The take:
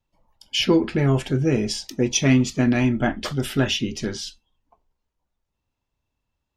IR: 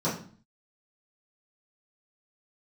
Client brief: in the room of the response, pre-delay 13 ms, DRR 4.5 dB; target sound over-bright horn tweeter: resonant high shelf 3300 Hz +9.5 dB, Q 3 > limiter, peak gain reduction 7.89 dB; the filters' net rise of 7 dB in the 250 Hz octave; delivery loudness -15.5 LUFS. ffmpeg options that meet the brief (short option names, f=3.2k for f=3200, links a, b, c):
-filter_complex "[0:a]equalizer=f=250:t=o:g=8,asplit=2[a][b];[1:a]atrim=start_sample=2205,adelay=13[c];[b][c]afir=irnorm=-1:irlink=0,volume=-15dB[d];[a][d]amix=inputs=2:normalize=0,highshelf=f=3.3k:t=q:w=3:g=9.5,volume=-3dB,alimiter=limit=-5.5dB:level=0:latency=1"